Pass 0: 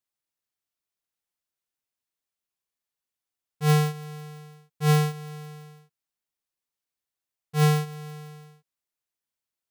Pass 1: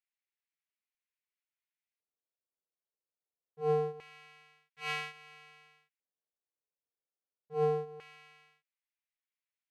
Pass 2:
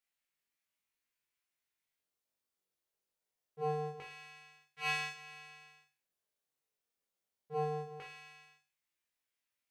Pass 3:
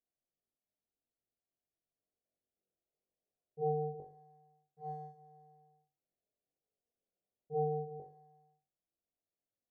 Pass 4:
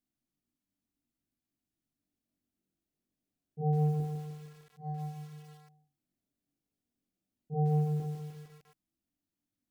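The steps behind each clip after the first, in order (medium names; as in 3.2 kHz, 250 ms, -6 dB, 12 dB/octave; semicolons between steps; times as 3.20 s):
reverse echo 37 ms -9 dB; LFO band-pass square 0.25 Hz 480–2200 Hz
compression 6:1, threshold -32 dBFS, peak gain reduction 8 dB; flutter echo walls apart 3.6 m, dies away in 0.37 s; trim +2.5 dB
elliptic low-pass 730 Hz, stop band 40 dB; trim +3 dB
resonant low shelf 360 Hz +8.5 dB, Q 3; bit-crushed delay 152 ms, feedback 55%, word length 9-bit, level -7 dB; trim +1.5 dB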